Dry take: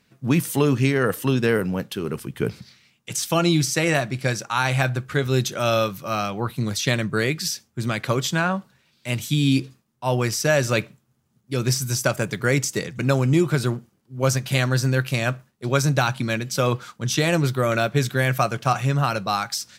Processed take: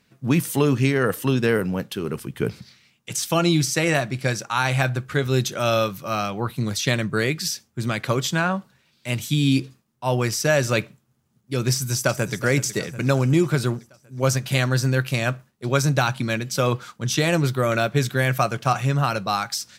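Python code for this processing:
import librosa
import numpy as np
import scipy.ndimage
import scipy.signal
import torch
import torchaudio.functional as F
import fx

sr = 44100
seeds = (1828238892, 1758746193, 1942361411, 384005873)

y = fx.echo_throw(x, sr, start_s=11.71, length_s=0.65, ms=370, feedback_pct=60, wet_db=-14.0)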